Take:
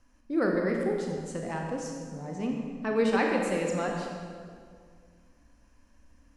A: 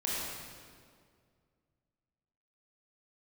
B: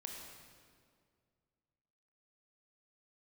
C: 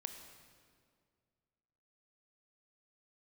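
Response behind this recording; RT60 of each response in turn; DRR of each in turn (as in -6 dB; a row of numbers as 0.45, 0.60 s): B; 2.1, 2.1, 2.1 s; -6.5, 0.0, 6.0 dB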